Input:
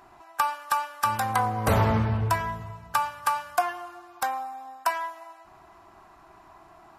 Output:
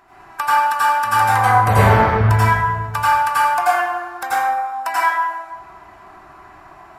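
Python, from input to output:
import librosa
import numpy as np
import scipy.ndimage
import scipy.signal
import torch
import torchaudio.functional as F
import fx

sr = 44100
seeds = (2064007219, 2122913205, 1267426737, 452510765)

y = fx.peak_eq(x, sr, hz=1900.0, db=5.5, octaves=1.1)
y = fx.rev_plate(y, sr, seeds[0], rt60_s=1.2, hf_ratio=0.45, predelay_ms=75, drr_db=-9.5)
y = y * librosa.db_to_amplitude(-1.5)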